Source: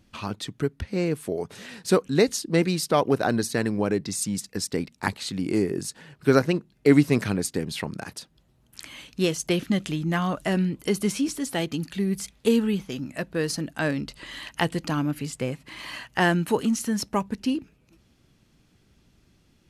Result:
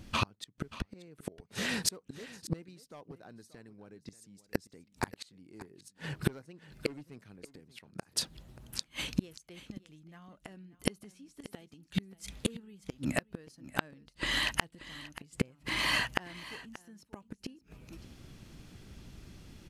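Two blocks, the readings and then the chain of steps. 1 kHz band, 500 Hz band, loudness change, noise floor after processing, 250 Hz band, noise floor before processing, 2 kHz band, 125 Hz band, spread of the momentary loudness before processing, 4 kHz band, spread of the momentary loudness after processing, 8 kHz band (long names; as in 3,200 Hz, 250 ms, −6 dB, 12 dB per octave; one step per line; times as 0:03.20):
−11.0 dB, −18.5 dB, −10.5 dB, −70 dBFS, −16.0 dB, −63 dBFS, −6.0 dB, −13.0 dB, 12 LU, −4.0 dB, 21 LU, −9.0 dB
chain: low-shelf EQ 98 Hz +5 dB
gain into a clipping stage and back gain 12.5 dB
gate with flip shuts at −22 dBFS, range −37 dB
on a send: single-tap delay 582 ms −16.5 dB
on the sum: level +8 dB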